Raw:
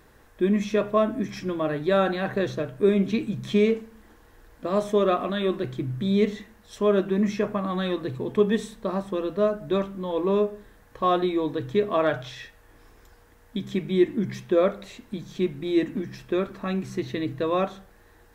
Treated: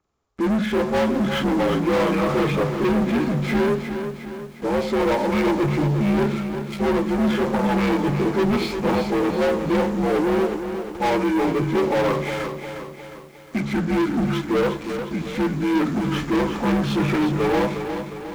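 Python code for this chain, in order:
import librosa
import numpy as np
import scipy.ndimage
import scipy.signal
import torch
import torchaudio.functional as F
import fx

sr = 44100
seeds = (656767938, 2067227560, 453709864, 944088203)

y = fx.partial_stretch(x, sr, pct=82)
y = fx.rider(y, sr, range_db=10, speed_s=0.5)
y = fx.leveller(y, sr, passes=5)
y = fx.echo_crushed(y, sr, ms=357, feedback_pct=55, bits=7, wet_db=-8.0)
y = y * librosa.db_to_amplitude(-5.5)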